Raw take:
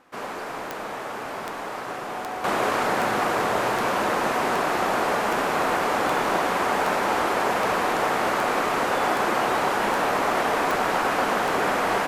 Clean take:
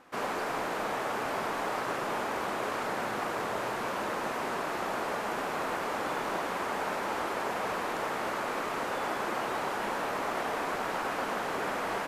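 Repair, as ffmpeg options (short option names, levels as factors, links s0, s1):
-af "adeclick=t=4,bandreject=f=740:w=30,asetnsamples=n=441:p=0,asendcmd='2.44 volume volume -9.5dB',volume=1"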